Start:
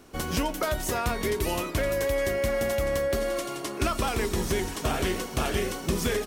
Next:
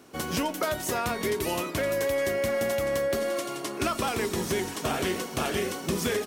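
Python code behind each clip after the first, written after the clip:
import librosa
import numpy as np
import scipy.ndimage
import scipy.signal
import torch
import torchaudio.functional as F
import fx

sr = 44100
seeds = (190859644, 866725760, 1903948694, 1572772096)

y = scipy.signal.sosfilt(scipy.signal.butter(2, 120.0, 'highpass', fs=sr, output='sos'), x)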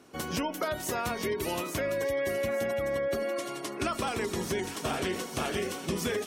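y = fx.spec_gate(x, sr, threshold_db=-30, keep='strong')
y = fx.echo_wet_highpass(y, sr, ms=856, feedback_pct=34, hz=3000.0, wet_db=-6)
y = y * librosa.db_to_amplitude(-3.0)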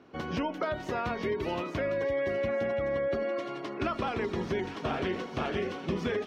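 y = fx.air_absorb(x, sr, metres=250.0)
y = y * librosa.db_to_amplitude(1.0)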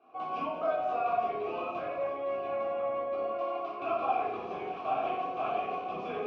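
y = fx.vowel_filter(x, sr, vowel='a')
y = fx.room_shoebox(y, sr, seeds[0], volume_m3=370.0, walls='mixed', distance_m=3.7)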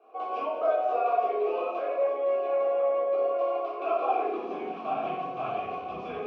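y = fx.filter_sweep_highpass(x, sr, from_hz=450.0, to_hz=62.0, start_s=4.01, end_s=6.12, q=3.2)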